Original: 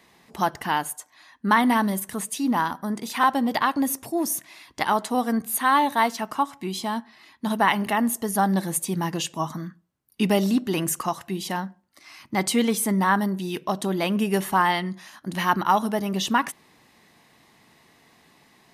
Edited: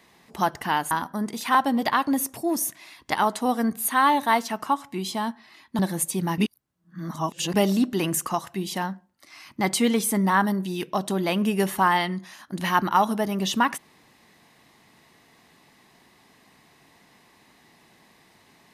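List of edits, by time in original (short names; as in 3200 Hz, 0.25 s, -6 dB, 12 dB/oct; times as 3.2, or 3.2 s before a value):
0.91–2.6 cut
7.48–8.53 cut
9.12–10.28 reverse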